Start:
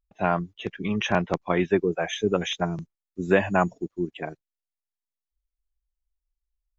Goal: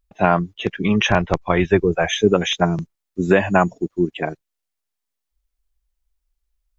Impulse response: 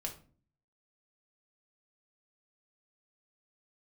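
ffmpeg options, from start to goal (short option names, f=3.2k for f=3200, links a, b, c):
-filter_complex "[0:a]asplit=3[a][b][c];[a]afade=t=out:st=1.08:d=0.02[d];[b]asubboost=boost=10.5:cutoff=90,afade=t=in:st=1.08:d=0.02,afade=t=out:st=2.15:d=0.02[e];[c]afade=t=in:st=2.15:d=0.02[f];[d][e][f]amix=inputs=3:normalize=0,alimiter=limit=-11dB:level=0:latency=1:release=340,volume=9dB"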